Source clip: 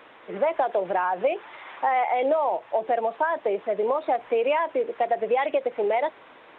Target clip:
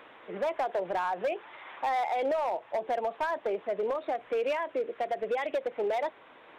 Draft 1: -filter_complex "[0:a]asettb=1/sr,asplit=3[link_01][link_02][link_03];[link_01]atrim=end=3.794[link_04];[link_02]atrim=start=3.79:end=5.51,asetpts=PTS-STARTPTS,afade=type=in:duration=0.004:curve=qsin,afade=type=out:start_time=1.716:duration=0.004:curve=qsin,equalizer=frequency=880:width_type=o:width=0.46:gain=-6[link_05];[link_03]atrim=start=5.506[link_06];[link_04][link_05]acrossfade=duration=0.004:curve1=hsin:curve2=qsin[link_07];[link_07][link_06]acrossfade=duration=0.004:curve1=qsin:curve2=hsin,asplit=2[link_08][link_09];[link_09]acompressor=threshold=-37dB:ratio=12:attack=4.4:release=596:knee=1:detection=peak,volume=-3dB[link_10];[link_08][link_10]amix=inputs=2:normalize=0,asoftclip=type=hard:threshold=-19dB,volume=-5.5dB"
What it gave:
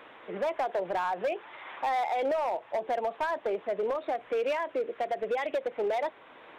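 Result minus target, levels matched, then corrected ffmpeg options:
downward compressor: peak gain reduction −10.5 dB
-filter_complex "[0:a]asettb=1/sr,asplit=3[link_01][link_02][link_03];[link_01]atrim=end=3.794[link_04];[link_02]atrim=start=3.79:end=5.51,asetpts=PTS-STARTPTS,afade=type=in:duration=0.004:curve=qsin,afade=type=out:start_time=1.716:duration=0.004:curve=qsin,equalizer=frequency=880:width_type=o:width=0.46:gain=-6[link_05];[link_03]atrim=start=5.506[link_06];[link_04][link_05]acrossfade=duration=0.004:curve1=hsin:curve2=qsin[link_07];[link_07][link_06]acrossfade=duration=0.004:curve1=qsin:curve2=hsin,asplit=2[link_08][link_09];[link_09]acompressor=threshold=-48.5dB:ratio=12:attack=4.4:release=596:knee=1:detection=peak,volume=-3dB[link_10];[link_08][link_10]amix=inputs=2:normalize=0,asoftclip=type=hard:threshold=-19dB,volume=-5.5dB"

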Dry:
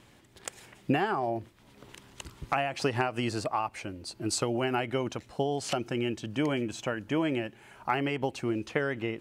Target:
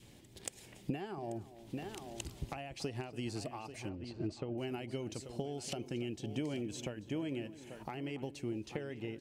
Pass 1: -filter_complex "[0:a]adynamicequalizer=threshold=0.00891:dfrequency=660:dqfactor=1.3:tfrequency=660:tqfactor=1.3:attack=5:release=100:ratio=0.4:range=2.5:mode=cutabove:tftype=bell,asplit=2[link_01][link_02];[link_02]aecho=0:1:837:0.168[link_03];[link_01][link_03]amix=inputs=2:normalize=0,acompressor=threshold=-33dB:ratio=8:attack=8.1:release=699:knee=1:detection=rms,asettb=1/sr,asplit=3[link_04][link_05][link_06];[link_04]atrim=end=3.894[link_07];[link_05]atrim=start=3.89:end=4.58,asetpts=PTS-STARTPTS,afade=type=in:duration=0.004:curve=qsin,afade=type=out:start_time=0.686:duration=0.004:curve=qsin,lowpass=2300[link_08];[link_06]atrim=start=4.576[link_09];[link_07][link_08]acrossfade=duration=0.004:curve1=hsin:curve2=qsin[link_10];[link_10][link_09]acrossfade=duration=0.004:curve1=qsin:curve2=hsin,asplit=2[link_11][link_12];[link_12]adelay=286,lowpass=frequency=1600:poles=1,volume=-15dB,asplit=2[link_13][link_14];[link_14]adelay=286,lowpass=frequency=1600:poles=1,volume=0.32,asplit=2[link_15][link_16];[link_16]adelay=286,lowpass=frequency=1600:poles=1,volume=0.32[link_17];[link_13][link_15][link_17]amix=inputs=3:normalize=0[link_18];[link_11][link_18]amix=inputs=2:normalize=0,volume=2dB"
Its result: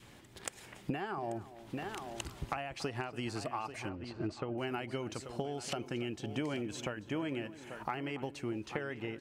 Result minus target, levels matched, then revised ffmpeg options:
1,000 Hz band +5.0 dB
-filter_complex "[0:a]adynamicequalizer=threshold=0.00891:dfrequency=660:dqfactor=1.3:tfrequency=660:tqfactor=1.3:attack=5:release=100:ratio=0.4:range=2.5:mode=cutabove:tftype=bell,asplit=2[link_01][link_02];[link_02]aecho=0:1:837:0.168[link_03];[link_01][link_03]amix=inputs=2:normalize=0,acompressor=threshold=-33dB:ratio=8:attack=8.1:release=699:knee=1:detection=rms,equalizer=frequency=1300:width=0.96:gain=-12.5,asettb=1/sr,asplit=3[link_04][link_05][link_06];[link_04]atrim=end=3.894[link_07];[link_05]atrim=start=3.89:end=4.58,asetpts=PTS-STARTPTS,afade=type=in:duration=0.004:curve=qsin,afade=type=out:start_time=0.686:duration=0.004:curve=qsin,lowpass=2300[link_08];[link_06]atrim=start=4.576[link_09];[link_07][link_08]acrossfade=duration=0.004:curve1=hsin:curve2=qsin[link_10];[link_10][link_09]acrossfade=duration=0.004:curve1=qsin:curve2=hsin,asplit=2[link_11][link_12];[link_12]adelay=286,lowpass=frequency=1600:poles=1,volume=-15dB,asplit=2[link_13][link_14];[link_14]adelay=286,lowpass=frequency=1600:poles=1,volume=0.32,asplit=2[link_15][link_16];[link_16]adelay=286,lowpass=frequency=1600:poles=1,volume=0.32[link_17];[link_13][link_15][link_17]amix=inputs=3:normalize=0[link_18];[link_11][link_18]amix=inputs=2:normalize=0,volume=2dB"

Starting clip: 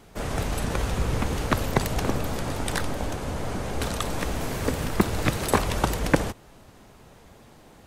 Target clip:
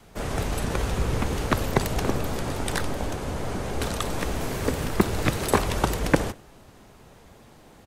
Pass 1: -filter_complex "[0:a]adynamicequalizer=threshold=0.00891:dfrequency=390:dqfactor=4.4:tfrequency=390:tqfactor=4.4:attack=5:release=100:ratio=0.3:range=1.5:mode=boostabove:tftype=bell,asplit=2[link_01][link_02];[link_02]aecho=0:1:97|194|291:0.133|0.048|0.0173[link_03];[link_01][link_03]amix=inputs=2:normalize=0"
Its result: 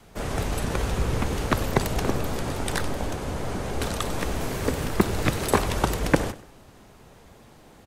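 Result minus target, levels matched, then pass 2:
echo-to-direct +7 dB
-filter_complex "[0:a]adynamicequalizer=threshold=0.00891:dfrequency=390:dqfactor=4.4:tfrequency=390:tqfactor=4.4:attack=5:release=100:ratio=0.3:range=1.5:mode=boostabove:tftype=bell,asplit=2[link_01][link_02];[link_02]aecho=0:1:97|194:0.0596|0.0214[link_03];[link_01][link_03]amix=inputs=2:normalize=0"

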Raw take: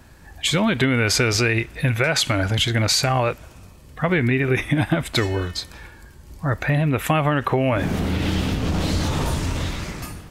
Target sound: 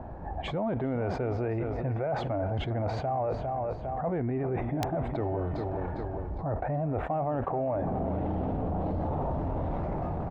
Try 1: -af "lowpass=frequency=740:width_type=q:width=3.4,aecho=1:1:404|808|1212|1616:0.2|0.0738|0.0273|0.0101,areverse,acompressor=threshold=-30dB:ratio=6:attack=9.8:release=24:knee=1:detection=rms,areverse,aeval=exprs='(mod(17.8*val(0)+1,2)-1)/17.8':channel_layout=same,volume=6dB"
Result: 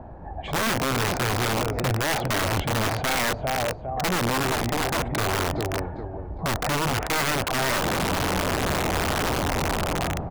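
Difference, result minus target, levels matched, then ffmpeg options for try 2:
downward compressor: peak gain reduction −6 dB
-af "lowpass=frequency=740:width_type=q:width=3.4,aecho=1:1:404|808|1212|1616:0.2|0.0738|0.0273|0.0101,areverse,acompressor=threshold=-37.5dB:ratio=6:attack=9.8:release=24:knee=1:detection=rms,areverse,aeval=exprs='(mod(17.8*val(0)+1,2)-1)/17.8':channel_layout=same,volume=6dB"

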